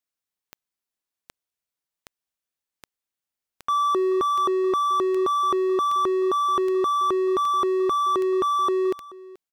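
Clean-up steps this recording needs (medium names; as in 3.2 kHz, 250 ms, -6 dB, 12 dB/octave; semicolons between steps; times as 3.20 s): de-click; inverse comb 432 ms -20.5 dB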